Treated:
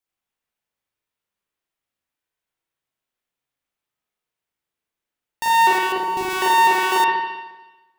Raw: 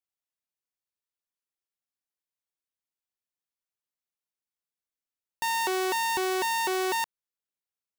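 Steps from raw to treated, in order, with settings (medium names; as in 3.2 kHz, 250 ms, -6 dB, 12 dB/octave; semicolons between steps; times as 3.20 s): 5.78–6.30 s: median filter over 41 samples; spring tank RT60 1.1 s, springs 39/54 ms, chirp 55 ms, DRR -6.5 dB; trim +4 dB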